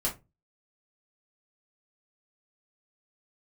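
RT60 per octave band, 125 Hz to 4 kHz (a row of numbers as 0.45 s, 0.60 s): 0.40 s, 0.30 s, 0.25 s, 0.20 s, 0.20 s, 0.15 s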